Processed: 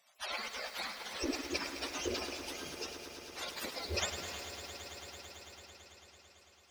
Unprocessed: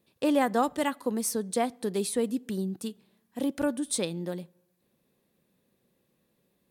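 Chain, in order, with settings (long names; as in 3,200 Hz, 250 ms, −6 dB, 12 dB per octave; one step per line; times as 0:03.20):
frequency axis turned over on the octave scale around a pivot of 1,100 Hz
parametric band 300 Hz +7.5 dB 2.6 octaves
gate on every frequency bin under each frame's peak −25 dB weak
echo that builds up and dies away 111 ms, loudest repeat 5, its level −15 dB
feedback echo at a low word length 104 ms, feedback 80%, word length 10 bits, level −9 dB
level +10 dB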